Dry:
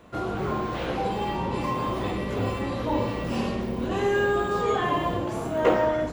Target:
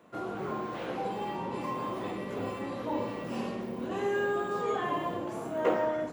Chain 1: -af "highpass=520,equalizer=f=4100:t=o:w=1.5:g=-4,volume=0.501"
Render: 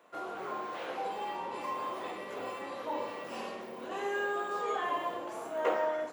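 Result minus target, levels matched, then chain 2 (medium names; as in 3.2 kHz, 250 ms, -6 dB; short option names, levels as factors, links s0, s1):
125 Hz band -14.0 dB
-af "highpass=170,equalizer=f=4100:t=o:w=1.5:g=-4,volume=0.501"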